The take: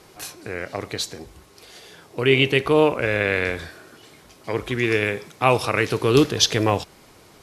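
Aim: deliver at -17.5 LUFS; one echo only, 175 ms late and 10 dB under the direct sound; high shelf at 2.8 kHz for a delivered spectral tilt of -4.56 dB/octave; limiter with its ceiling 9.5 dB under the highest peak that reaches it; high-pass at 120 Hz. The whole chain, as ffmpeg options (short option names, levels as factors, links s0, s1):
-af "highpass=120,highshelf=f=2800:g=-4.5,alimiter=limit=0.237:level=0:latency=1,aecho=1:1:175:0.316,volume=2.51"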